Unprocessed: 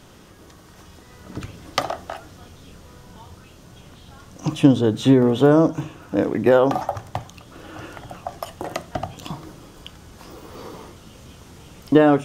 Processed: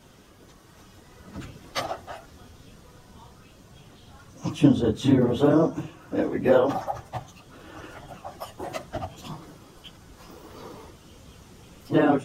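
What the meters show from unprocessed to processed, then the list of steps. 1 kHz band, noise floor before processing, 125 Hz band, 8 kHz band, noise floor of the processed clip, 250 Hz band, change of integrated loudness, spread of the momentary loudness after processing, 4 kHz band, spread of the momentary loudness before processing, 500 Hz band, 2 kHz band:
-5.0 dB, -47 dBFS, -4.5 dB, -5.0 dB, -53 dBFS, -4.5 dB, -5.0 dB, 22 LU, -5.0 dB, 22 LU, -5.0 dB, -5.0 dB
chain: phase scrambler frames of 50 ms; gain -5 dB

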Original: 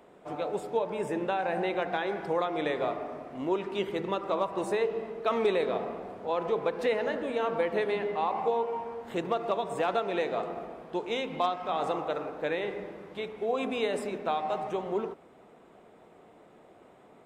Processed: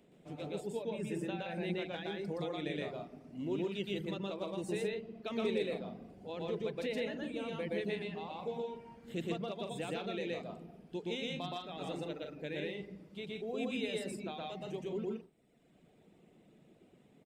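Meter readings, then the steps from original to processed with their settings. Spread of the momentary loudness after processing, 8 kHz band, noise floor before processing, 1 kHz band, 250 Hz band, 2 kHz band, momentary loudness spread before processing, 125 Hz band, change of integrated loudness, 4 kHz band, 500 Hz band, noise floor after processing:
8 LU, n/a, -56 dBFS, -15.5 dB, -3.5 dB, -8.0 dB, 8 LU, +0.5 dB, -8.5 dB, -3.0 dB, -9.5 dB, -65 dBFS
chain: reverb removal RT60 1.4 s; EQ curve 100 Hz 0 dB, 160 Hz +6 dB, 1100 Hz -16 dB, 2700 Hz -1 dB; loudspeakers at several distances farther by 41 m 0 dB, 55 m -7 dB; gain -4.5 dB

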